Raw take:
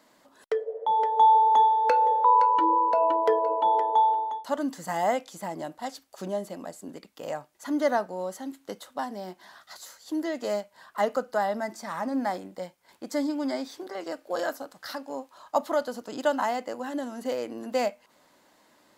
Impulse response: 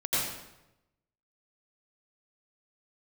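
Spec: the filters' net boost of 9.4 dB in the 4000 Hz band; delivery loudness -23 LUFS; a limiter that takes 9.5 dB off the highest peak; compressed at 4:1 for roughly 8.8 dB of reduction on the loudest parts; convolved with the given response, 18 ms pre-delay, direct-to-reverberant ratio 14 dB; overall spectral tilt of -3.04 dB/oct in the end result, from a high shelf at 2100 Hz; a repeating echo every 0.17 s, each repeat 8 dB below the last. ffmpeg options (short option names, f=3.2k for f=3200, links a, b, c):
-filter_complex "[0:a]highshelf=f=2.1k:g=6,equalizer=f=4k:t=o:g=6,acompressor=threshold=-25dB:ratio=4,alimiter=limit=-23.5dB:level=0:latency=1,aecho=1:1:170|340|510|680|850:0.398|0.159|0.0637|0.0255|0.0102,asplit=2[a][b];[1:a]atrim=start_sample=2205,adelay=18[c];[b][c]afir=irnorm=-1:irlink=0,volume=-23.5dB[d];[a][d]amix=inputs=2:normalize=0,volume=9.5dB"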